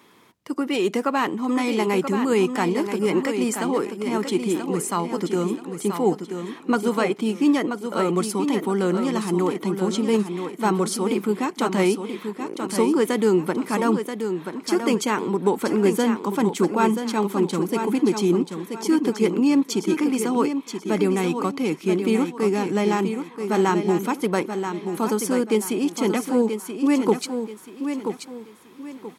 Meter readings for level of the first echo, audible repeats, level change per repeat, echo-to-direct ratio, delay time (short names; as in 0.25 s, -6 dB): -7.5 dB, 3, -10.0 dB, -7.0 dB, 0.981 s